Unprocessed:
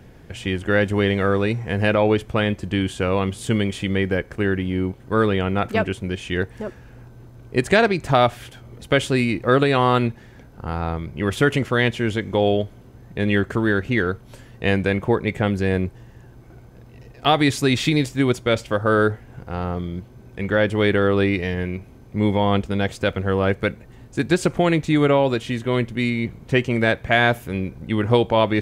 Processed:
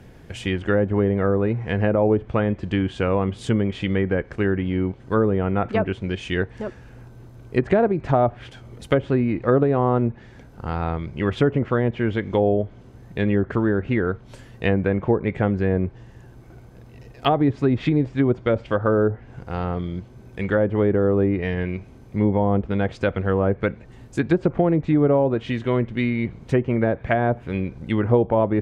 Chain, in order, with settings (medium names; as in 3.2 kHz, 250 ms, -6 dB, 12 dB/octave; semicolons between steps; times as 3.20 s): low-pass that closes with the level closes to 780 Hz, closed at -14 dBFS